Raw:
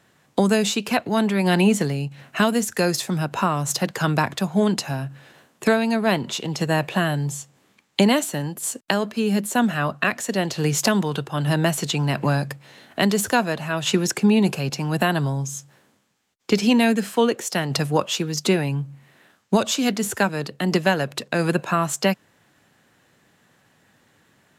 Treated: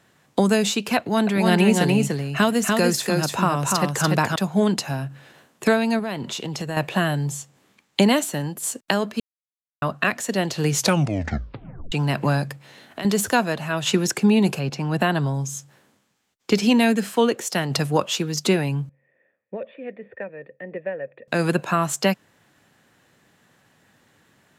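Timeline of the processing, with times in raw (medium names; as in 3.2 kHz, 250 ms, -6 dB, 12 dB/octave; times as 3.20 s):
0.98–4.36 s: delay 292 ms -3 dB
5.99–6.77 s: compression 4:1, threshold -25 dBFS
9.20–9.82 s: mute
10.74 s: tape stop 1.18 s
12.44–13.05 s: compression 5:1, threshold -28 dBFS
14.58–15.33 s: low-pass 2.7 kHz -> 5.7 kHz 6 dB/octave
18.89–21.28 s: cascade formant filter e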